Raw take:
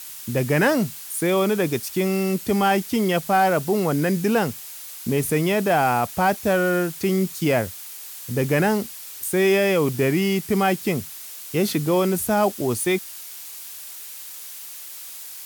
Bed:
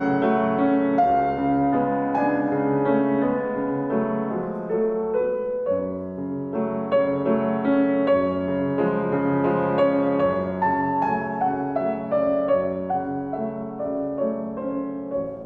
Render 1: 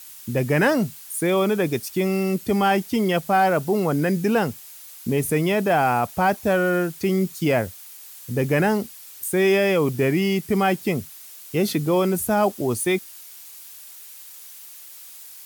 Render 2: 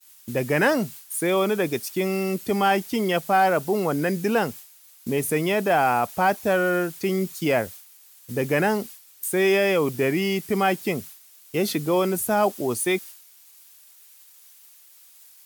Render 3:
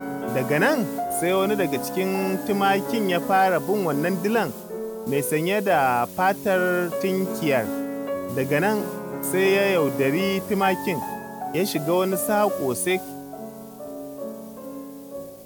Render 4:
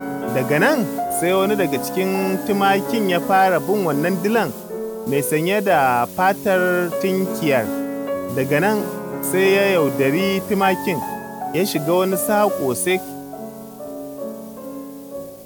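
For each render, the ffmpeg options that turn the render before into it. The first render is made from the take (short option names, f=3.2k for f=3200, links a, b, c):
-af "afftdn=nr=6:nf=-38"
-af "agate=range=-33dB:threshold=-34dB:ratio=3:detection=peak,lowshelf=f=150:g=-11.5"
-filter_complex "[1:a]volume=-9dB[a];[0:a][a]amix=inputs=2:normalize=0"
-af "volume=4dB"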